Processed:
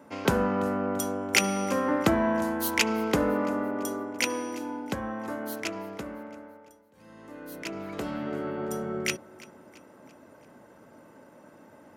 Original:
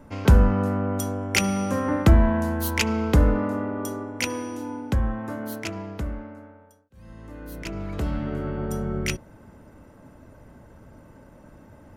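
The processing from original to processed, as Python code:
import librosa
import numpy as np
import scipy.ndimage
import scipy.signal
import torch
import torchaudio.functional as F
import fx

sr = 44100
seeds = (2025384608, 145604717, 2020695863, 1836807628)

p1 = scipy.signal.sosfilt(scipy.signal.butter(2, 260.0, 'highpass', fs=sr, output='sos'), x)
y = p1 + fx.echo_feedback(p1, sr, ms=337, feedback_pct=50, wet_db=-21.0, dry=0)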